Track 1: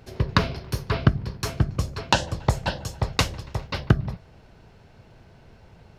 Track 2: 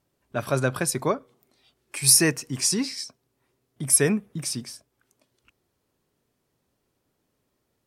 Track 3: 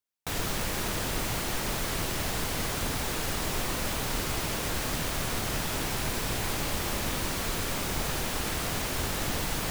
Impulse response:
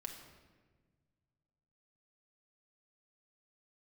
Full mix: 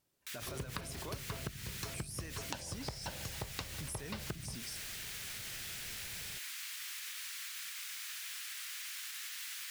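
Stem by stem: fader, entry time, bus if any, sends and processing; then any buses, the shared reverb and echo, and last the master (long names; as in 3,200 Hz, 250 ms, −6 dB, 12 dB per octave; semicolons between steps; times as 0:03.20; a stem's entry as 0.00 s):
−4.5 dB, 0.40 s, no bus, no send, downward compressor 2 to 1, threshold −34 dBFS, peak gain reduction 12.5 dB
−10.0 dB, 0.00 s, bus A, no send, high-shelf EQ 2,000 Hz +9.5 dB; downward compressor 3 to 1, threshold −18 dBFS, peak gain reduction 11.5 dB
−8.5 dB, 0.00 s, bus A, no send, inverse Chebyshev high-pass filter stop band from 370 Hz, stop band 70 dB
bus A: 0.0 dB, brickwall limiter −33 dBFS, peak gain reduction 18.5 dB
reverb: not used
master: downward compressor 6 to 1, threshold −38 dBFS, peak gain reduction 11.5 dB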